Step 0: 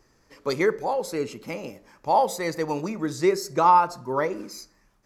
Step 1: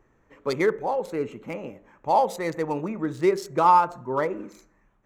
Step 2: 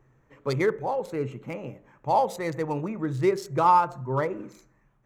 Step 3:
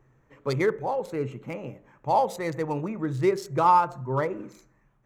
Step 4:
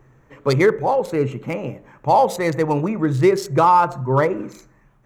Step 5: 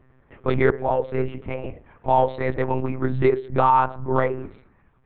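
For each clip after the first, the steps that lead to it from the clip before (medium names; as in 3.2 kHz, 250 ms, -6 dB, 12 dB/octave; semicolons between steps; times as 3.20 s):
local Wiener filter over 9 samples
peaking EQ 130 Hz +15 dB 0.27 oct; trim -2 dB
no audible change
loudness maximiser +14 dB; trim -4.5 dB
monotone LPC vocoder at 8 kHz 130 Hz; trim -3.5 dB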